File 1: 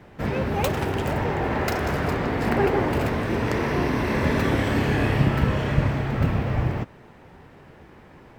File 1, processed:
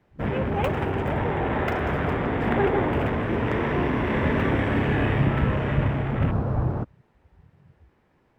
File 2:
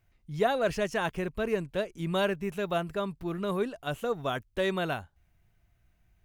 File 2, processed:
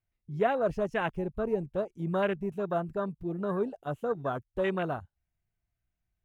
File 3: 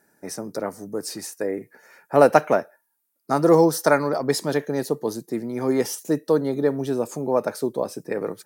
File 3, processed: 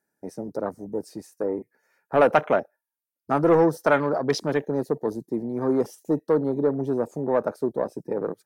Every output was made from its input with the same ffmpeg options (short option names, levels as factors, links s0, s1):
-filter_complex "[0:a]afwtdn=0.0224,acrossover=split=1300[s0][s1];[s0]asoftclip=type=tanh:threshold=0.266[s2];[s2][s1]amix=inputs=2:normalize=0"